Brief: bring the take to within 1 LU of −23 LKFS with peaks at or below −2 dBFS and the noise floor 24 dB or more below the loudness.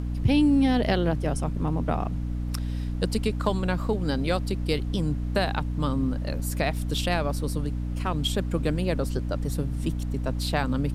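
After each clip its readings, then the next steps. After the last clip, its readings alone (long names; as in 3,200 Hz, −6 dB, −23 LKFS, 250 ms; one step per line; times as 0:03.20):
mains hum 60 Hz; hum harmonics up to 300 Hz; level of the hum −27 dBFS; background noise floor −30 dBFS; target noise floor −51 dBFS; integrated loudness −27.0 LKFS; sample peak −9.0 dBFS; target loudness −23.0 LKFS
→ hum removal 60 Hz, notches 5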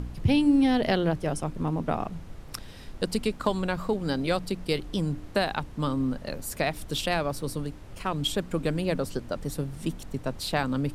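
mains hum none found; background noise floor −44 dBFS; target noise floor −53 dBFS
→ noise reduction from a noise print 9 dB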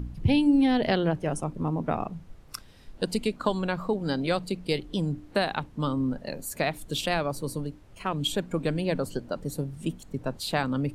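background noise floor −50 dBFS; target noise floor −53 dBFS
→ noise reduction from a noise print 6 dB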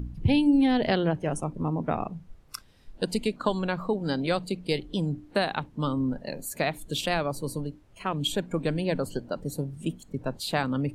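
background noise floor −54 dBFS; integrated loudness −28.5 LKFS; sample peak −10.0 dBFS; target loudness −23.0 LKFS
→ level +5.5 dB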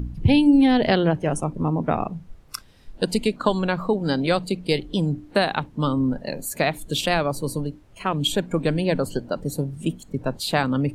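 integrated loudness −23.0 LKFS; sample peak −4.5 dBFS; background noise floor −49 dBFS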